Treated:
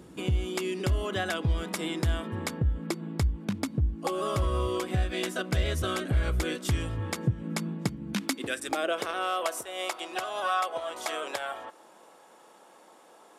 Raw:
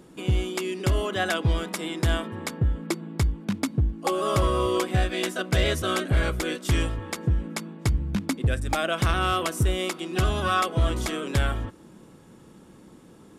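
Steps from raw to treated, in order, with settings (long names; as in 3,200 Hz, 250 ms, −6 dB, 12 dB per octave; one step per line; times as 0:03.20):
0:08.13–0:08.69: tilt shelving filter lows −8.5 dB, about 760 Hz
downward compressor, threshold −27 dBFS, peak gain reduction 9.5 dB
high-pass filter sweep 64 Hz → 700 Hz, 0:06.55–0:09.60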